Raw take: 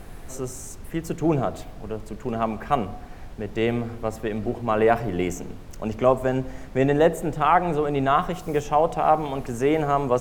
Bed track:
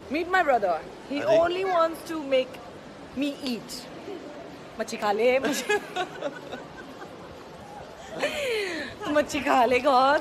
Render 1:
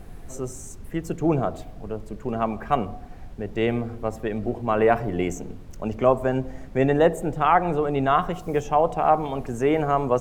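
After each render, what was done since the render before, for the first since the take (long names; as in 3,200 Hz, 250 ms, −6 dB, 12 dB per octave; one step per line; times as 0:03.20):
broadband denoise 6 dB, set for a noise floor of −41 dBFS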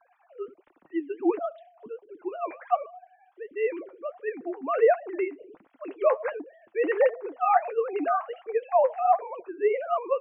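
three sine waves on the formant tracks
flanger 1.4 Hz, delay 2.6 ms, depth 8.5 ms, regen +55%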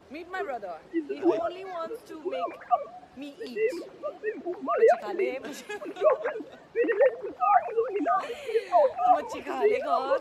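mix in bed track −12.5 dB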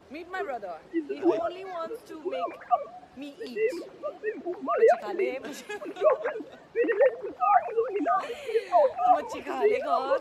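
no processing that can be heard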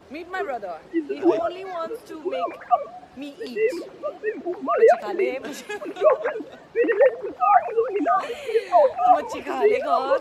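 level +5 dB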